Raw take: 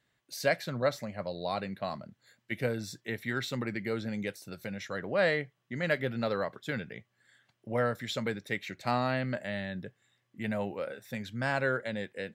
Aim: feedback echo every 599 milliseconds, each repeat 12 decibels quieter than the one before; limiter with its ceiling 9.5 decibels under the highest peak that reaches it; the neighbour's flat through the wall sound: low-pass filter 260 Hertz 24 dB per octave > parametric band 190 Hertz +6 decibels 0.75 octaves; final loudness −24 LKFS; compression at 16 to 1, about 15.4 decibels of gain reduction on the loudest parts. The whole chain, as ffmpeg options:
ffmpeg -i in.wav -af "acompressor=threshold=-37dB:ratio=16,alimiter=level_in=8.5dB:limit=-24dB:level=0:latency=1,volume=-8.5dB,lowpass=frequency=260:width=0.5412,lowpass=frequency=260:width=1.3066,equalizer=frequency=190:width_type=o:width=0.75:gain=6,aecho=1:1:599|1198|1797:0.251|0.0628|0.0157,volume=21.5dB" out.wav

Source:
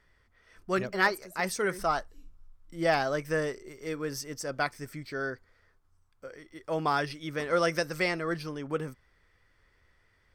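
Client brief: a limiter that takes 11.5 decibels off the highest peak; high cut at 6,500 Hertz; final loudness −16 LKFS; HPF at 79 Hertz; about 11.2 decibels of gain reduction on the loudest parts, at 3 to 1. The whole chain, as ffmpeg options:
ffmpeg -i in.wav -af "highpass=79,lowpass=6500,acompressor=threshold=-36dB:ratio=3,volume=27dB,alimiter=limit=-5.5dB:level=0:latency=1" out.wav

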